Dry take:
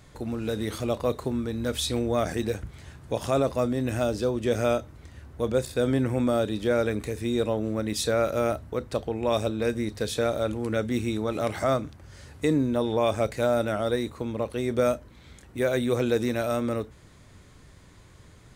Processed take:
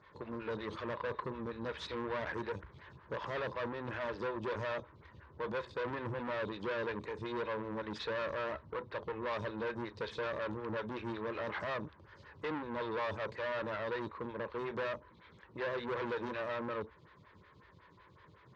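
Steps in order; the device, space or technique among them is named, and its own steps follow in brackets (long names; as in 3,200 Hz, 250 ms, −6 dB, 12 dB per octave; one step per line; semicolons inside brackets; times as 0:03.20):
vibe pedal into a guitar amplifier (phaser with staggered stages 5.4 Hz; tube saturation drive 33 dB, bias 0.6; loudspeaker in its box 81–4,200 Hz, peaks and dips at 260 Hz −10 dB, 720 Hz −10 dB, 1,000 Hz +9 dB, 1,700 Hz +5 dB)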